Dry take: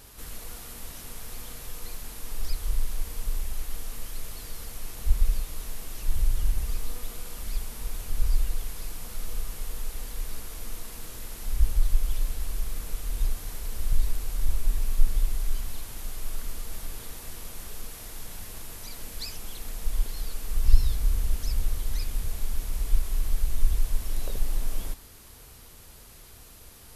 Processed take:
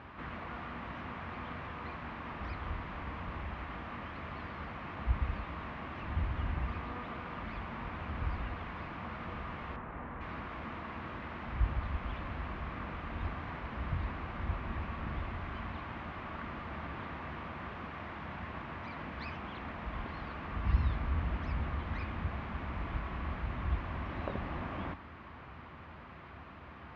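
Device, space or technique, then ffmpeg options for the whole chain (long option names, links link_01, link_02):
bass cabinet: -filter_complex "[0:a]asettb=1/sr,asplit=3[link_01][link_02][link_03];[link_01]atrim=end=9.764[link_04];[link_02]atrim=start=9.76:end=10.21,asetpts=PTS-STARTPTS,afade=type=in:duration=0.004:curve=qsin,afade=type=out:start_time=0.446:duration=0.004:curve=qsin,lowpass=1700[link_05];[link_03]atrim=start=10.206[link_06];[link_04][link_05]acrossfade=duration=0.004:curve1=hsin:curve2=qsin[link_07];[link_07][link_06]acrossfade=duration=0.004:curve1=qsin:curve2=hsin,highpass=frequency=75:width=0.5412,highpass=frequency=75:width=1.3066,equalizer=frequency=110:width_type=q:width=4:gain=-7,equalizer=frequency=450:width_type=q:width=4:gain=-10,equalizer=frequency=1100:width_type=q:width=4:gain=5,lowpass=frequency=2300:width=0.5412,lowpass=frequency=2300:width=1.3066,highshelf=frequency=5900:gain=-4.5,volume=7dB"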